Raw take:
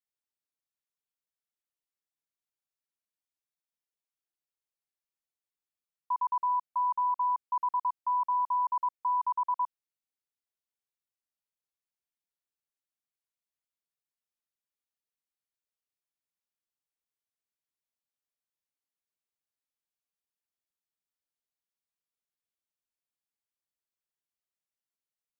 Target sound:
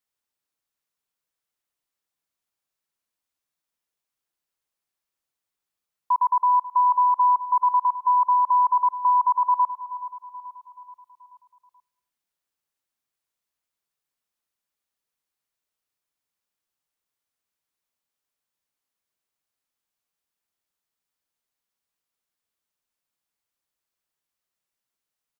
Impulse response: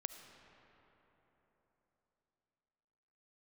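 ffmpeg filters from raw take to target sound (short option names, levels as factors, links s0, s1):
-filter_complex "[0:a]equalizer=f=1100:w=1.5:g=2.5,aecho=1:1:430|860|1290|1720|2150:0.178|0.0907|0.0463|0.0236|0.012,asplit=2[s0][s1];[1:a]atrim=start_sample=2205,afade=t=out:st=0.35:d=0.01,atrim=end_sample=15876[s2];[s1][s2]afir=irnorm=-1:irlink=0,volume=0.376[s3];[s0][s3]amix=inputs=2:normalize=0,volume=1.78"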